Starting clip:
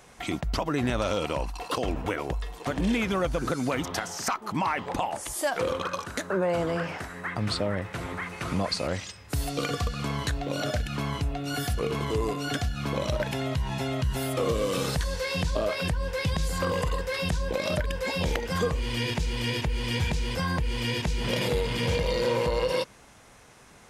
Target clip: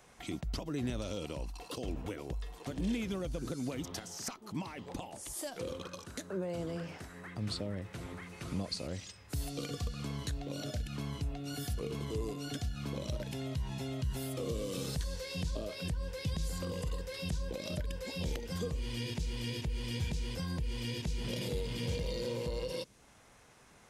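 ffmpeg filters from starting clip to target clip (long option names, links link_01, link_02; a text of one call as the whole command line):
ffmpeg -i in.wav -filter_complex "[0:a]acrossover=split=490|3000[link_01][link_02][link_03];[link_02]acompressor=threshold=-45dB:ratio=4[link_04];[link_01][link_04][link_03]amix=inputs=3:normalize=0,volume=-7.5dB" out.wav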